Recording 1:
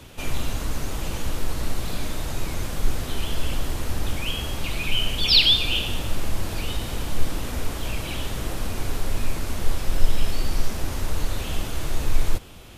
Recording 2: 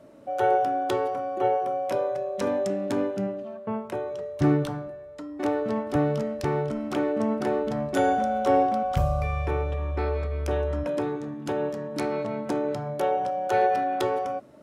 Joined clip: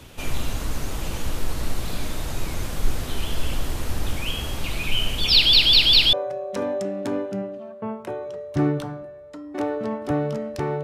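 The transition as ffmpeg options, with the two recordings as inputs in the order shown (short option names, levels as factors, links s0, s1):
-filter_complex "[0:a]apad=whole_dur=10.83,atrim=end=10.83,asplit=4[s0][s1][s2][s3];[s0]atrim=end=5.532[s4];[s1]atrim=start=5.328:end=5.532[s5];[s2]atrim=start=5.328:end=5.532[s6];[s3]atrim=start=5.328:end=5.532[s7];[1:a]atrim=start=1.978:end=6.68[s8];[s4][s5]acrossfade=d=0.004:c1=hsin:c2=hsin[s9];[s9][s6]acrossfade=d=0.004:c1=hsin:c2=hsin[s10];[s10][s7]acrossfade=d=0.004:c1=hsin:c2=hsin[s11];[s11][s8]acrossfade=d=0.004:c1=hsin:c2=hsin"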